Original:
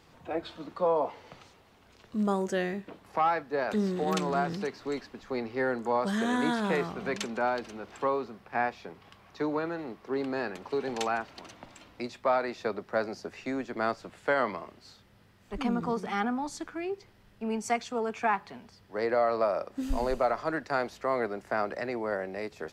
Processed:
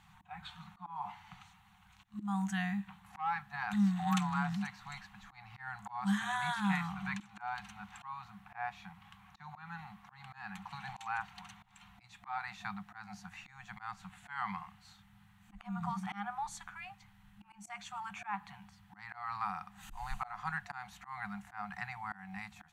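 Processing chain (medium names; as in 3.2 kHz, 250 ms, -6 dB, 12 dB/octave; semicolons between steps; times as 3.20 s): FFT band-reject 210–720 Hz; slow attack 234 ms; graphic EQ with 31 bands 200 Hz +4 dB, 315 Hz +10 dB, 5 kHz -12 dB; trim -2 dB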